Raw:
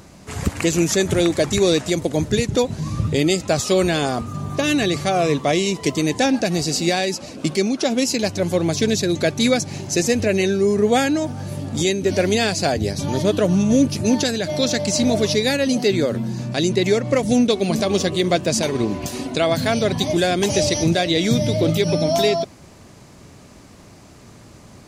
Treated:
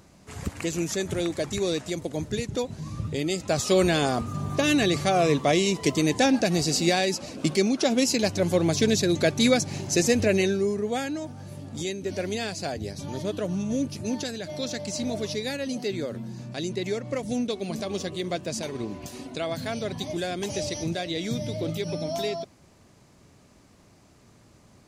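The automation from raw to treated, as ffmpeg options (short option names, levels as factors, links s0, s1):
-af "volume=0.708,afade=t=in:st=3.27:d=0.52:silence=0.446684,afade=t=out:st=10.33:d=0.49:silence=0.375837"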